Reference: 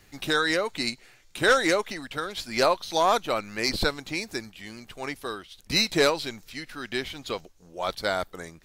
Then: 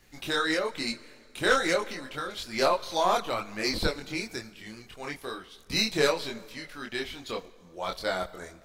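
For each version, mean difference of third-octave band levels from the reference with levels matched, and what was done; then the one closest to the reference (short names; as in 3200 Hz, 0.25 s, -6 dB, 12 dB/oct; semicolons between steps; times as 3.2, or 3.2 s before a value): 3.0 dB: plate-style reverb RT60 2.1 s, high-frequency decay 0.75×, DRR 17 dB; chorus voices 4, 1 Hz, delay 25 ms, depth 3 ms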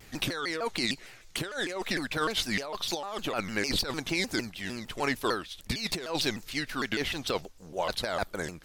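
8.5 dB: negative-ratio compressor -31 dBFS, ratio -1; shaped vibrato saw down 6.6 Hz, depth 250 cents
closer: first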